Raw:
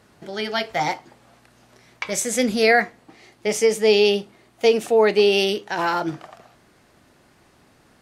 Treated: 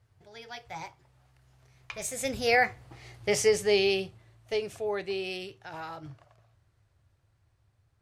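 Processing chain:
source passing by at 0:03.14, 21 m/s, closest 8.9 metres
low shelf with overshoot 150 Hz +13 dB, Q 3
level −1.5 dB

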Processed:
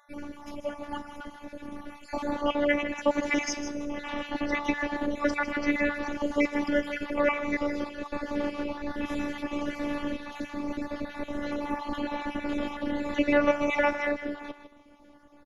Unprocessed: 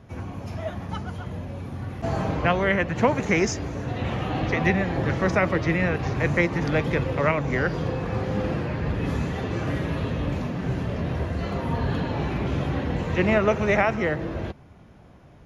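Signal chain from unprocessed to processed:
time-frequency cells dropped at random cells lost 38%
parametric band 62 Hz −14.5 dB 0.85 octaves
tuned comb filter 91 Hz, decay 1.5 s, harmonics all, mix 50%
on a send: single-tap delay 156 ms −11 dB
on the sum: phases set to zero 290 Hz
level +6.5 dB

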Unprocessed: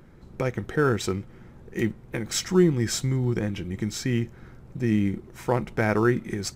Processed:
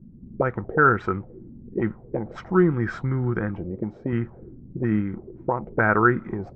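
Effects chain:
0:03.70–0:04.13: low-shelf EQ 91 Hz −11 dB
0:05.00–0:05.72: downward compressor 8 to 1, threshold −24 dBFS, peak gain reduction 7.5 dB
envelope-controlled low-pass 200–1,400 Hz up, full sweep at −22.5 dBFS

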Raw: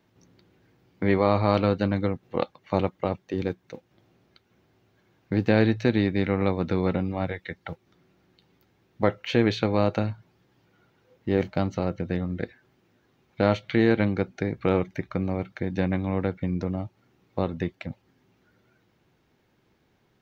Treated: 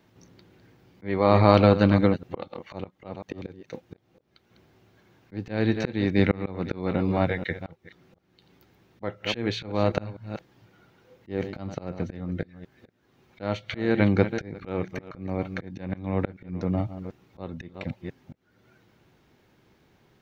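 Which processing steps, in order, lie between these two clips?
delay that plays each chunk backwards 248 ms, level −13 dB
volume swells 386 ms
level +5 dB

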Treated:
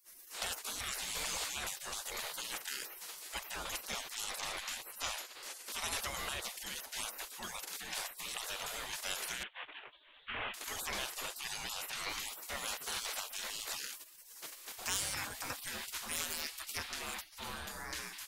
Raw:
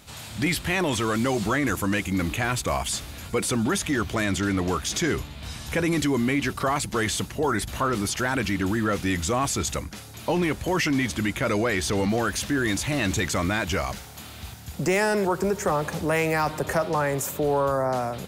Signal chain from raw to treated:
0:09.43–0:10.54: variable-slope delta modulation 16 kbit/s
gate on every frequency bin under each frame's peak −25 dB weak
level +1 dB

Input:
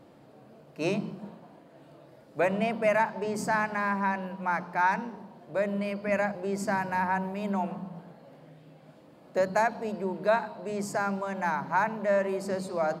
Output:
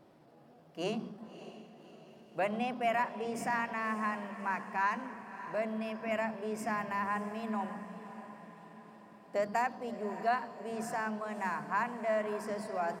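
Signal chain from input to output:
pitch shifter +1.5 semitones
feedback delay with all-pass diffusion 595 ms, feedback 53%, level −13 dB
level −6.5 dB

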